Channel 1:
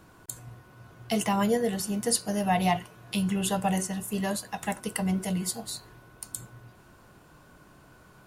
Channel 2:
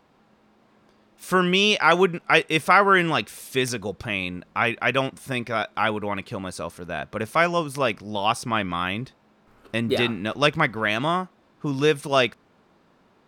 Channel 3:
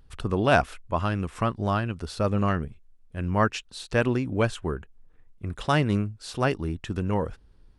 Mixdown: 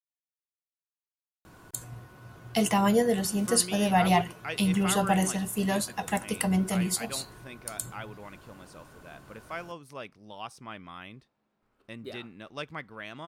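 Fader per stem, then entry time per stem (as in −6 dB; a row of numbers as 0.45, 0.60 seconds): +2.0 dB, −18.0 dB, muted; 1.45 s, 2.15 s, muted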